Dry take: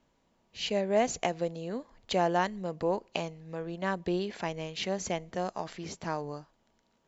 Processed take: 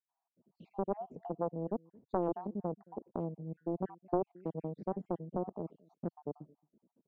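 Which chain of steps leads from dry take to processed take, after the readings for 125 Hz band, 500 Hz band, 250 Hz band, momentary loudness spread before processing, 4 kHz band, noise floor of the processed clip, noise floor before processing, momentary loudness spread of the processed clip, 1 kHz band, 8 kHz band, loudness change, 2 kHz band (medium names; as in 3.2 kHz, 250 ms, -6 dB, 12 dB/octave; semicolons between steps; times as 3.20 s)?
-3.5 dB, -6.5 dB, -3.5 dB, 11 LU, under -40 dB, under -85 dBFS, -72 dBFS, 10 LU, -8.0 dB, no reading, -6.5 dB, under -25 dB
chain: random holes in the spectrogram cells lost 63%; in parallel at +3 dB: compression, threshold -38 dBFS, peak gain reduction 13.5 dB; on the sum: Butterworth band-pass 250 Hz, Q 0.94; echo from a far wall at 38 m, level -26 dB; loudspeaker Doppler distortion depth 0.83 ms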